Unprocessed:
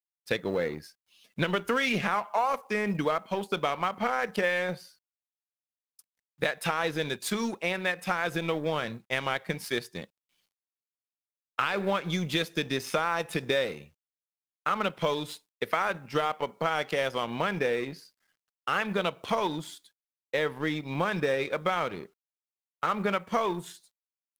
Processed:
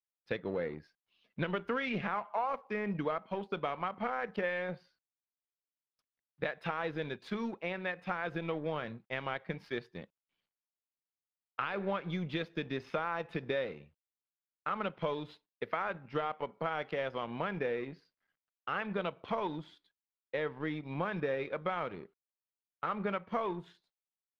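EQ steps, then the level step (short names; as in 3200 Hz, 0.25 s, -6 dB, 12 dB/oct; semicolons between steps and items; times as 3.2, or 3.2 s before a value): air absorption 310 m; -5.5 dB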